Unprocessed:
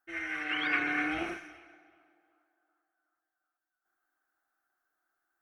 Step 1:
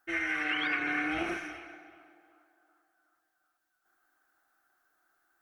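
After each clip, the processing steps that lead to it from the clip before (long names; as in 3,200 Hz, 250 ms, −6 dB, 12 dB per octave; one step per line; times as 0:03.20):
downward compressor 6 to 1, threshold −37 dBFS, peak gain reduction 12 dB
level +8.5 dB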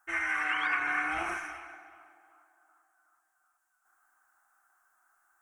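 octave-band graphic EQ 125/250/500/1,000/4,000/8,000 Hz −5/−10/−8/+11/−10/+10 dB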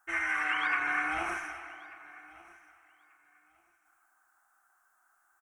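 repeating echo 1,188 ms, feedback 19%, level −21 dB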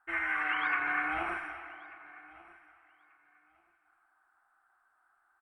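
moving average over 7 samples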